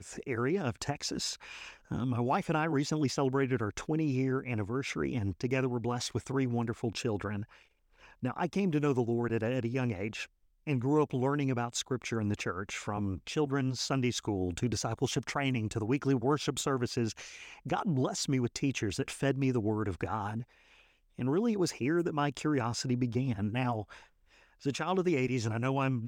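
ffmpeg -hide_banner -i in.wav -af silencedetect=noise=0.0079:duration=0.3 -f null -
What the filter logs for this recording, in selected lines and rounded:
silence_start: 7.44
silence_end: 8.23 | silence_duration: 0.79
silence_start: 10.25
silence_end: 10.67 | silence_duration: 0.42
silence_start: 20.43
silence_end: 21.19 | silence_duration: 0.76
silence_start: 23.98
silence_end: 24.64 | silence_duration: 0.66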